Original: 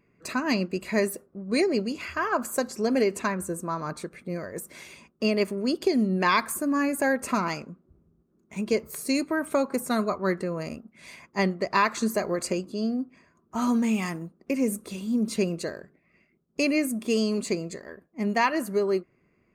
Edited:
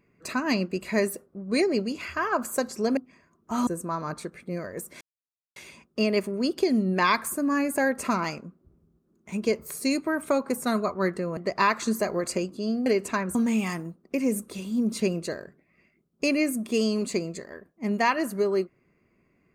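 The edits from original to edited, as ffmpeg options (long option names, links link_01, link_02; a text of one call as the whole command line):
ffmpeg -i in.wav -filter_complex "[0:a]asplit=7[link_01][link_02][link_03][link_04][link_05][link_06][link_07];[link_01]atrim=end=2.972[link_08];[link_02]atrim=start=13.008:end=13.712[link_09];[link_03]atrim=start=3.458:end=4.8,asetpts=PTS-STARTPTS,afade=type=out:start_time=1.338:duration=0.004:curve=hsin,apad=pad_dur=0.55[link_10];[link_04]atrim=start=4.8:end=10.612,asetpts=PTS-STARTPTS,afade=type=in:duration=0.004:curve=hsin[link_11];[link_05]atrim=start=11.518:end=13.012[link_12];[link_06]atrim=start=2.968:end=3.462[link_13];[link_07]atrim=start=13.708[link_14];[link_08][link_09]acrossfade=duration=0.004:curve1=hsin:curve2=hsin[link_15];[link_10][link_11]concat=n=2:v=0:a=1[link_16];[link_15][link_16]acrossfade=duration=0.004:curve1=hsin:curve2=hsin[link_17];[link_17][link_12]acrossfade=duration=0.004:curve1=hsin:curve2=hsin[link_18];[link_18][link_13]acrossfade=duration=0.004:curve1=hsin:curve2=hsin[link_19];[link_19][link_14]acrossfade=duration=0.004:curve1=hsin:curve2=hsin" out.wav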